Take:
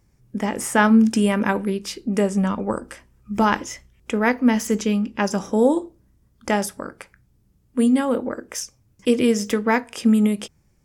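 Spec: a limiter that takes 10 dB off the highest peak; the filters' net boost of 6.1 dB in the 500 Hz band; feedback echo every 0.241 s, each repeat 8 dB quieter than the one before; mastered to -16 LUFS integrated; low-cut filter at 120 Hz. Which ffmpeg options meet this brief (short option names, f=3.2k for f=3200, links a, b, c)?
-af "highpass=120,equalizer=f=500:t=o:g=7,alimiter=limit=-10dB:level=0:latency=1,aecho=1:1:241|482|723|964|1205:0.398|0.159|0.0637|0.0255|0.0102,volume=5.5dB"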